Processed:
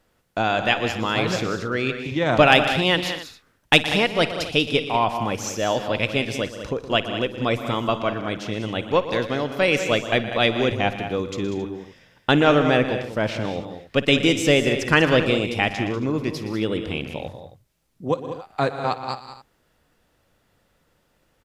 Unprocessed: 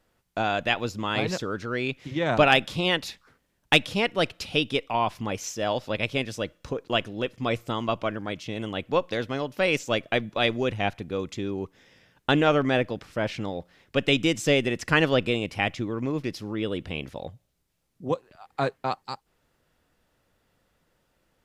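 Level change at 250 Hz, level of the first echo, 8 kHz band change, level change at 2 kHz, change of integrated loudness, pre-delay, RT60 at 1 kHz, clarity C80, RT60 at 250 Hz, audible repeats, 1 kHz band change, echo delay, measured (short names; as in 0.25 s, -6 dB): +5.0 dB, -18.0 dB, +5.0 dB, +5.0 dB, +4.5 dB, none, none, none, none, 6, +5.0 dB, 55 ms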